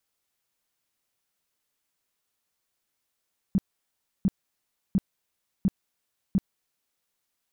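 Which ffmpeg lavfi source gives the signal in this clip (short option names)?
-f lavfi -i "aevalsrc='0.133*sin(2*PI*193*mod(t,0.7))*lt(mod(t,0.7),6/193)':d=3.5:s=44100"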